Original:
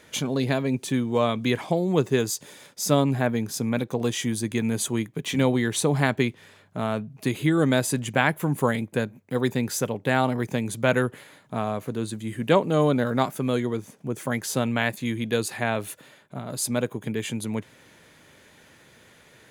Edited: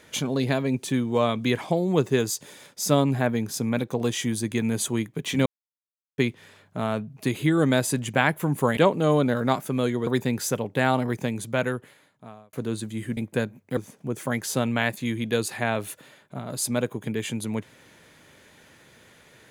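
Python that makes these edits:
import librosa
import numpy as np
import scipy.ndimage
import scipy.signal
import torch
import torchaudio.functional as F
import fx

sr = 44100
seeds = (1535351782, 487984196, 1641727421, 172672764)

y = fx.edit(x, sr, fx.silence(start_s=5.46, length_s=0.72),
    fx.swap(start_s=8.77, length_s=0.6, other_s=12.47, other_length_s=1.3),
    fx.fade_out_span(start_s=10.4, length_s=1.43), tone=tone)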